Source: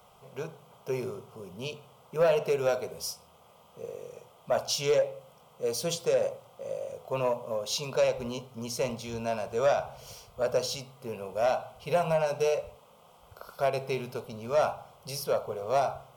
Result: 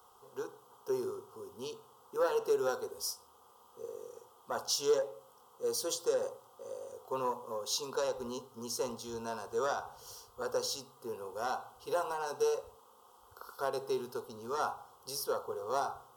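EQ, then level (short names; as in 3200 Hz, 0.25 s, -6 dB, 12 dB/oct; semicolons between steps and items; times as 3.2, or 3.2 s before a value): low shelf 110 Hz -11.5 dB; fixed phaser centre 620 Hz, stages 6; 0.0 dB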